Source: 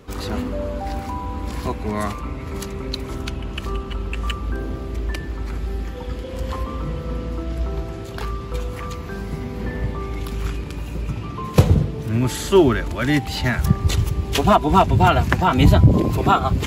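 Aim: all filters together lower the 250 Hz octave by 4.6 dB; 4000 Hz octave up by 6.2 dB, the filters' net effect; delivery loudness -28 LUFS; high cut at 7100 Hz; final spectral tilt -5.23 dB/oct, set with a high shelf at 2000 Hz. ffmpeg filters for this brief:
-af "lowpass=7.1k,equalizer=f=250:t=o:g=-7,highshelf=f=2k:g=3.5,equalizer=f=4k:t=o:g=5,volume=-5.5dB"

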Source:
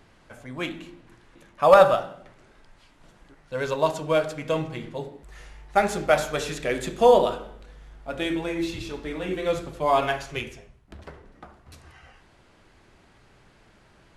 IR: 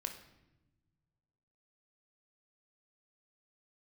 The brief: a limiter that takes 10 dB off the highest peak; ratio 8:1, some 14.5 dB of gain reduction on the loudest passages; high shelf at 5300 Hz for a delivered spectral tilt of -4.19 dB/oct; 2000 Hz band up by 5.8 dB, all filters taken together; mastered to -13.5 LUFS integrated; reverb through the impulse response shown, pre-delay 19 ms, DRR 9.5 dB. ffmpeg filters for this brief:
-filter_complex "[0:a]equalizer=f=2k:t=o:g=7,highshelf=f=5.3k:g=5.5,acompressor=threshold=-23dB:ratio=8,alimiter=limit=-20dB:level=0:latency=1,asplit=2[a][b];[1:a]atrim=start_sample=2205,adelay=19[c];[b][c]afir=irnorm=-1:irlink=0,volume=-8.5dB[d];[a][d]amix=inputs=2:normalize=0,volume=17.5dB"

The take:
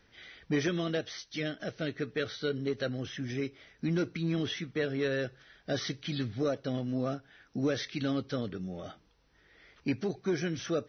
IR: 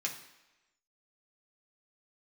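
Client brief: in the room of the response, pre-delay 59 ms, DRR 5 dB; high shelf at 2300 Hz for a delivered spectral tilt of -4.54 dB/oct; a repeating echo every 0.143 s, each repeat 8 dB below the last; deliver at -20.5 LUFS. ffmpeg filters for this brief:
-filter_complex "[0:a]highshelf=f=2.3k:g=3.5,aecho=1:1:143|286|429|572|715:0.398|0.159|0.0637|0.0255|0.0102,asplit=2[a][b];[1:a]atrim=start_sample=2205,adelay=59[c];[b][c]afir=irnorm=-1:irlink=0,volume=-8dB[d];[a][d]amix=inputs=2:normalize=0,volume=11.5dB"

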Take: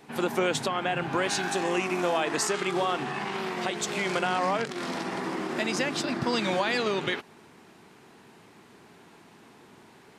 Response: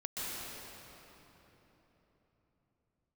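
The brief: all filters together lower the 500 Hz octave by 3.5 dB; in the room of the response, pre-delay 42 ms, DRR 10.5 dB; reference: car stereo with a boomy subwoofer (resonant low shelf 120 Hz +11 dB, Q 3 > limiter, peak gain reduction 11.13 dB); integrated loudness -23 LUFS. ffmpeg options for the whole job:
-filter_complex "[0:a]equalizer=f=500:t=o:g=-3.5,asplit=2[a][b];[1:a]atrim=start_sample=2205,adelay=42[c];[b][c]afir=irnorm=-1:irlink=0,volume=-14.5dB[d];[a][d]amix=inputs=2:normalize=0,lowshelf=f=120:t=q:w=3:g=11,volume=11.5dB,alimiter=limit=-14dB:level=0:latency=1"

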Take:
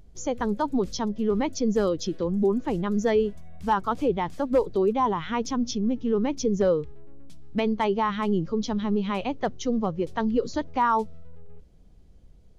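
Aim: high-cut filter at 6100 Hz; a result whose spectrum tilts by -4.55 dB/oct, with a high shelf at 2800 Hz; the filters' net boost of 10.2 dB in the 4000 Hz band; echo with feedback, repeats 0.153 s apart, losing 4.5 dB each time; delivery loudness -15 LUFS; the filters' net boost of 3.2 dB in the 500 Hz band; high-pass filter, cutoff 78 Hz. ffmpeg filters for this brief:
-af "highpass=78,lowpass=6.1k,equalizer=f=500:t=o:g=3.5,highshelf=f=2.8k:g=6.5,equalizer=f=4k:t=o:g=9,aecho=1:1:153|306|459|612|765|918|1071|1224|1377:0.596|0.357|0.214|0.129|0.0772|0.0463|0.0278|0.0167|0.01,volume=7dB"

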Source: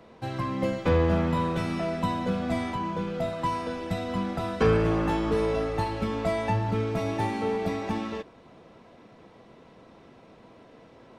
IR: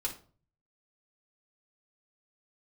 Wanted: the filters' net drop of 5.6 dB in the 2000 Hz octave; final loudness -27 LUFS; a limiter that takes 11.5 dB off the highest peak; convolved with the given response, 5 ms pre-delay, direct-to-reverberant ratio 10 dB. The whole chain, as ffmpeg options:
-filter_complex "[0:a]equalizer=f=2k:t=o:g=-7,alimiter=limit=-22dB:level=0:latency=1,asplit=2[a][b];[1:a]atrim=start_sample=2205,adelay=5[c];[b][c]afir=irnorm=-1:irlink=0,volume=-12.5dB[d];[a][d]amix=inputs=2:normalize=0,volume=4.5dB"

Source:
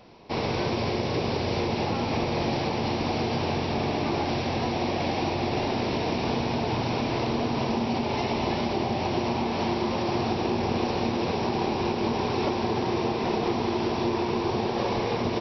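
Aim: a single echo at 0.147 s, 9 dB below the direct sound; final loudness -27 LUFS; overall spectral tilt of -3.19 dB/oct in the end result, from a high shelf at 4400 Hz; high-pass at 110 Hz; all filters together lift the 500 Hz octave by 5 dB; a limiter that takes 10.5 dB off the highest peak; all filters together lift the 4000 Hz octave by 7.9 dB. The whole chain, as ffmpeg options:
-af "highpass=110,equalizer=f=500:t=o:g=6.5,equalizer=f=4k:t=o:g=7.5,highshelf=f=4.4k:g=4,alimiter=limit=-20dB:level=0:latency=1,aecho=1:1:147:0.355,volume=1dB"

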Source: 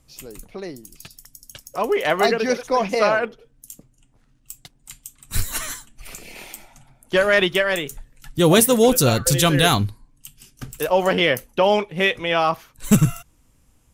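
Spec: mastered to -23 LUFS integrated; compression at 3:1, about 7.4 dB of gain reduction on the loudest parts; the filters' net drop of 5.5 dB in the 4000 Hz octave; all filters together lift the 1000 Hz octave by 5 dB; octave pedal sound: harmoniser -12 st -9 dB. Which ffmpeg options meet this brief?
-filter_complex "[0:a]equalizer=f=1k:t=o:g=7,equalizer=f=4k:t=o:g=-8,acompressor=threshold=-19dB:ratio=3,asplit=2[a][b];[b]asetrate=22050,aresample=44100,atempo=2,volume=-9dB[c];[a][c]amix=inputs=2:normalize=0"

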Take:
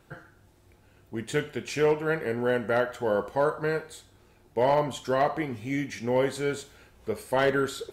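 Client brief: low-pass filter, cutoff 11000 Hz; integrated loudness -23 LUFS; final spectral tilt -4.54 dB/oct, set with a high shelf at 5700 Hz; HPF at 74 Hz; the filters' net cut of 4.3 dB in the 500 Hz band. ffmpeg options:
-af "highpass=74,lowpass=11k,equalizer=f=500:t=o:g=-5,highshelf=f=5.7k:g=-8.5,volume=7.5dB"

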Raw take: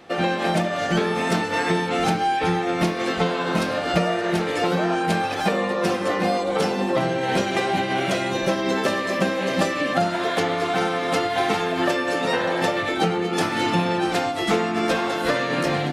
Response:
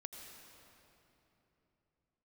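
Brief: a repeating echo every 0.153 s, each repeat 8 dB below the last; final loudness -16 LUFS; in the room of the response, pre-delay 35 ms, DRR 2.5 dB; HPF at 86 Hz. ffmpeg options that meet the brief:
-filter_complex "[0:a]highpass=86,aecho=1:1:153|306|459|612|765:0.398|0.159|0.0637|0.0255|0.0102,asplit=2[a][b];[1:a]atrim=start_sample=2205,adelay=35[c];[b][c]afir=irnorm=-1:irlink=0,volume=1.5dB[d];[a][d]amix=inputs=2:normalize=0,volume=4dB"

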